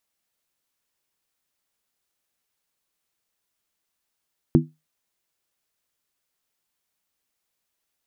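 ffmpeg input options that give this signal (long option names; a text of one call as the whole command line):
ffmpeg -f lavfi -i "aevalsrc='0.251*pow(10,-3*t/0.23)*sin(2*PI*155*t)+0.251*pow(10,-3*t/0.182)*sin(2*PI*247.1*t)+0.251*pow(10,-3*t/0.157)*sin(2*PI*331.1*t)':duration=0.63:sample_rate=44100" out.wav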